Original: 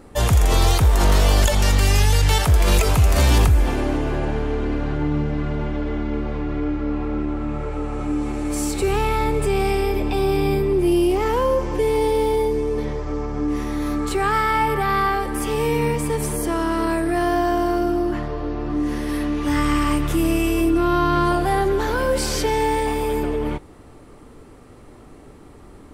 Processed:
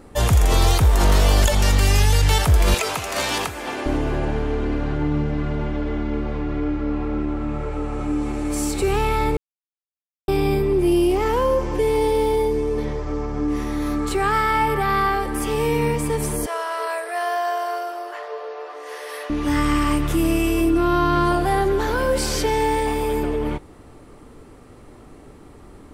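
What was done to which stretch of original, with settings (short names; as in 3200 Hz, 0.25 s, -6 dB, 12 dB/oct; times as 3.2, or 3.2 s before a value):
2.74–3.86 weighting filter A
9.37–10.28 mute
16.46–19.3 Chebyshev high-pass 420 Hz, order 6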